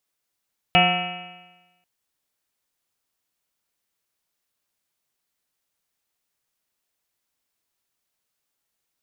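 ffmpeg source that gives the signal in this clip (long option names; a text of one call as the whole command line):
ffmpeg -f lavfi -i "aevalsrc='0.1*pow(10,-3*t/1.13)*sin(2*PI*175.31*t)+0.0299*pow(10,-3*t/1.13)*sin(2*PI*352.51*t)+0.0355*pow(10,-3*t/1.13)*sin(2*PI*533.44*t)+0.178*pow(10,-3*t/1.13)*sin(2*PI*719.88*t)+0.0355*pow(10,-3*t/1.13)*sin(2*PI*913.53*t)+0.0112*pow(10,-3*t/1.13)*sin(2*PI*1115.97*t)+0.0631*pow(10,-3*t/1.13)*sin(2*PI*1328.66*t)+0.0112*pow(10,-3*t/1.13)*sin(2*PI*1552.93*t)+0.0355*pow(10,-3*t/1.13)*sin(2*PI*1789.97*t)+0.0282*pow(10,-3*t/1.13)*sin(2*PI*2040.83*t)+0.0944*pow(10,-3*t/1.13)*sin(2*PI*2306.47*t)+0.112*pow(10,-3*t/1.13)*sin(2*PI*2587.69*t)+0.133*pow(10,-3*t/1.13)*sin(2*PI*2885.22*t)+0.0141*pow(10,-3*t/1.13)*sin(2*PI*3199.67*t)':duration=1.09:sample_rate=44100" out.wav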